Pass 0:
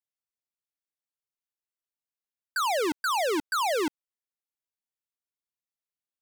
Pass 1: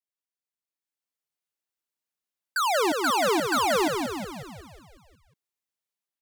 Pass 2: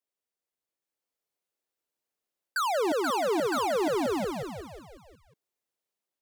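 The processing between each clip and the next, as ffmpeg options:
-filter_complex "[0:a]highpass=150,dynaudnorm=f=590:g=3:m=2.24,asplit=2[s0][s1];[s1]asplit=8[s2][s3][s4][s5][s6][s7][s8][s9];[s2]adelay=182,afreqshift=-56,volume=0.562[s10];[s3]adelay=364,afreqshift=-112,volume=0.32[s11];[s4]adelay=546,afreqshift=-168,volume=0.182[s12];[s5]adelay=728,afreqshift=-224,volume=0.105[s13];[s6]adelay=910,afreqshift=-280,volume=0.0596[s14];[s7]adelay=1092,afreqshift=-336,volume=0.0339[s15];[s8]adelay=1274,afreqshift=-392,volume=0.0193[s16];[s9]adelay=1456,afreqshift=-448,volume=0.011[s17];[s10][s11][s12][s13][s14][s15][s16][s17]amix=inputs=8:normalize=0[s18];[s0][s18]amix=inputs=2:normalize=0,volume=0.562"
-af "equalizer=f=470:t=o:w=1.5:g=9,areverse,acompressor=threshold=0.0562:ratio=6,areverse"

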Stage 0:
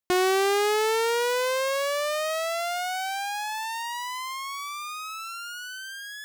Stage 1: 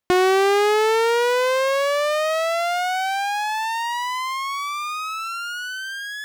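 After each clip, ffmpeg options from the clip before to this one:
-filter_complex "[0:a]asplit=2[s0][s1];[s1]acompressor=threshold=0.0251:ratio=6,volume=0.891[s2];[s0][s2]amix=inputs=2:normalize=0,highshelf=f=4700:g=-9,volume=1.58"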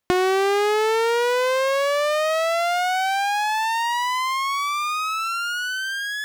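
-af "acompressor=threshold=0.0631:ratio=2.5,volume=1.5"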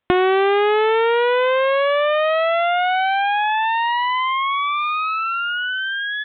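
-af "aresample=8000,aresample=44100,volume=1.5"

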